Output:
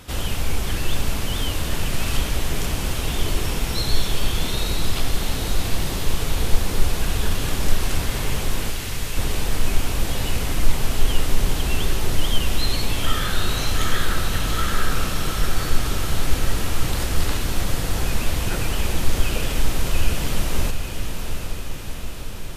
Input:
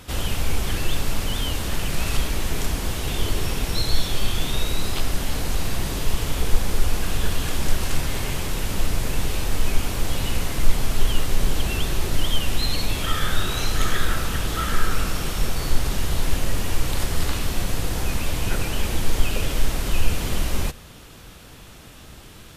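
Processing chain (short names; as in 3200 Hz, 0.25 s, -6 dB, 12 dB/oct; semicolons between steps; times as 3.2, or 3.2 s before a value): 8.7–9.17 Chebyshev high-pass 2100 Hz; diffused feedback echo 0.77 s, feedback 66%, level -7 dB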